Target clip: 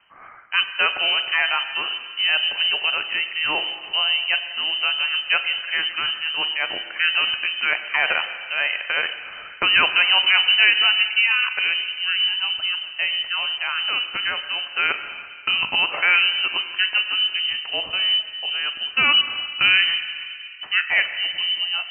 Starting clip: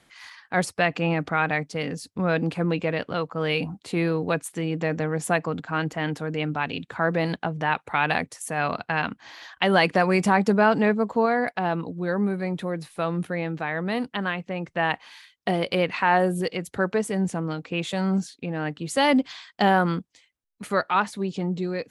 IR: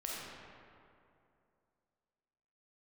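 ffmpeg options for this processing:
-filter_complex "[0:a]highpass=62,asplit=2[s0][s1];[1:a]atrim=start_sample=2205,adelay=43[s2];[s1][s2]afir=irnorm=-1:irlink=0,volume=0.299[s3];[s0][s3]amix=inputs=2:normalize=0,lowpass=f=2700:t=q:w=0.5098,lowpass=f=2700:t=q:w=0.6013,lowpass=f=2700:t=q:w=0.9,lowpass=f=2700:t=q:w=2.563,afreqshift=-3200,volume=1.33"

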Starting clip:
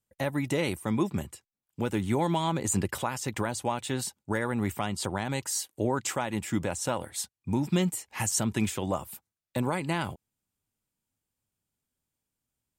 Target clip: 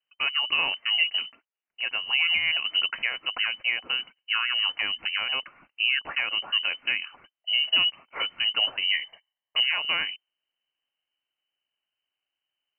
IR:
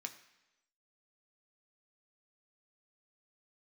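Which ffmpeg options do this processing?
-filter_complex "[0:a]asettb=1/sr,asplit=3[s0][s1][s2];[s0]atrim=end=1.314[s3];[s1]atrim=start=1.31:end=2.13,asetpts=PTS-STARTPTS,afade=t=in:d=0.004:c=qsin,afade=t=out:st=0.816:d=0.004:c=qsin,highpass=f=340:p=1[s4];[s2]atrim=start=2.126[s5];[s3][s4]acrossfade=d=0.004:c1=hsin:c2=qsin[s6];[s6][s5]acrossfade=d=0.004:c1=qsin:c2=hsin,asettb=1/sr,asplit=3[s7][s8][s9];[s7]atrim=end=8.814[s10];[s8]atrim=start=8.81:end=9.63,asetpts=PTS-STARTPTS,afade=t=in:d=0.004:c=qsin,afade=t=out:st=0.816:d=0.004:c=qsin,aecho=1:1:0.9:0.76,atrim=end_sample=36162[s11];[s9]atrim=start=9.626[s12];[s10][s11]acrossfade=d=0.004:c1=hsin:c2=qsin[s13];[s13][s12]acrossfade=d=0.004:c1=qsin:c2=hsin,lowpass=f=2600:t=q:w=0.5098,lowpass=f=2600:t=q:w=0.6013,lowpass=f=2600:t=q:w=0.9,lowpass=f=2600:t=q:w=2.563,afreqshift=-3100,volume=1.41"

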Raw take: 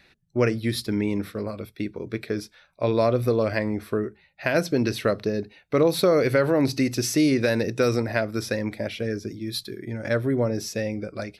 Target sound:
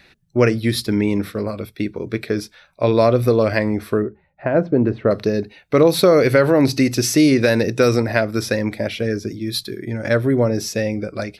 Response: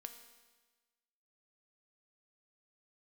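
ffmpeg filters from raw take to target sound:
-filter_complex "[0:a]asettb=1/sr,asplit=3[s0][s1][s2];[s0]atrim=end=4.024[s3];[s1]atrim=start=4.02:end=5.11,asetpts=PTS-STARTPTS,afade=t=in:d=0.004:c=qsin,afade=t=out:st=1.086:d=0.004:c=qsin,lowpass=1000[s4];[s2]atrim=start=5.106[s5];[s3][s4]acrossfade=d=0.004:c1=hsin:c2=qsin[s6];[s6][s5]acrossfade=d=0.004:c1=qsin:c2=hsin,volume=2.11"

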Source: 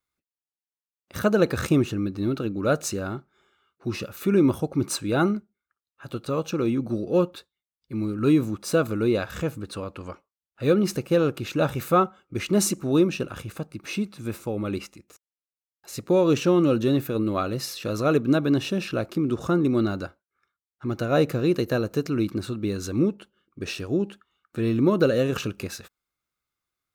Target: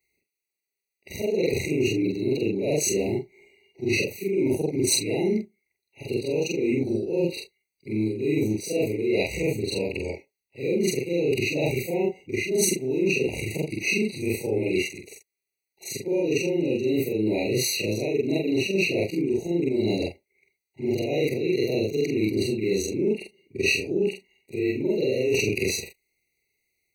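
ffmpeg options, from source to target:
-af "afftfilt=real='re':imag='-im':win_size=4096:overlap=0.75,equalizer=f=400:w=3.3:g=12.5,areverse,acompressor=threshold=0.0398:ratio=16,areverse,highshelf=f=1500:t=q:w=3:g=7.5,afftfilt=real='re*eq(mod(floor(b*sr/1024/960),2),0)':imag='im*eq(mod(floor(b*sr/1024/960),2),0)':win_size=1024:overlap=0.75,volume=2.51"

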